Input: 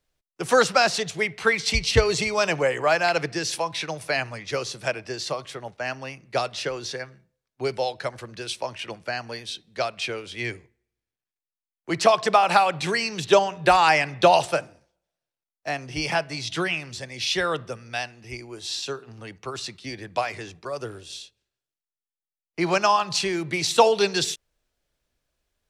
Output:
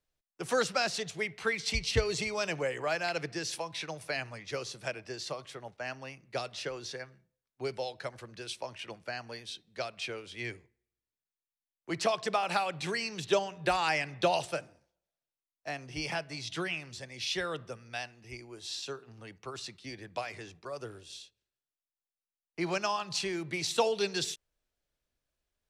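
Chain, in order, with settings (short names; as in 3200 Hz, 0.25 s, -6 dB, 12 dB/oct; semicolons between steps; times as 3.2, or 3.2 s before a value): dynamic EQ 940 Hz, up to -5 dB, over -29 dBFS, Q 1; gain -8.5 dB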